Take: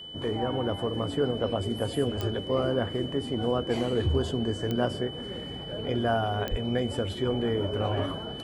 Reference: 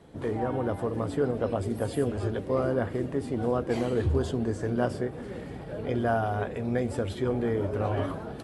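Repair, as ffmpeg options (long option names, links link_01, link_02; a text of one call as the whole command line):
ffmpeg -i in.wav -filter_complex "[0:a]adeclick=threshold=4,bandreject=frequency=3000:width=30,asplit=3[link_01][link_02][link_03];[link_01]afade=type=out:start_time=6.5:duration=0.02[link_04];[link_02]highpass=frequency=140:width=0.5412,highpass=frequency=140:width=1.3066,afade=type=in:start_time=6.5:duration=0.02,afade=type=out:start_time=6.62:duration=0.02[link_05];[link_03]afade=type=in:start_time=6.62:duration=0.02[link_06];[link_04][link_05][link_06]amix=inputs=3:normalize=0" out.wav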